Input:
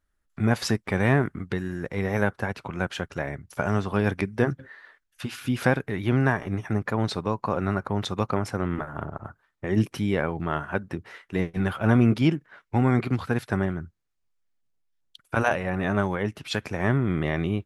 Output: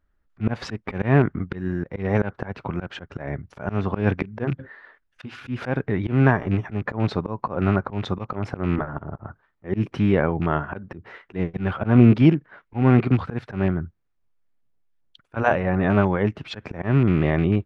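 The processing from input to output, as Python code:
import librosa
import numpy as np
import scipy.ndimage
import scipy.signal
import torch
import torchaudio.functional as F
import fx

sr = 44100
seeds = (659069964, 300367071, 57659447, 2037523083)

y = fx.rattle_buzz(x, sr, strikes_db=-26.0, level_db=-26.0)
y = fx.spacing_loss(y, sr, db_at_10k=29)
y = fx.auto_swell(y, sr, attack_ms=151.0)
y = F.gain(torch.from_numpy(y), 7.0).numpy()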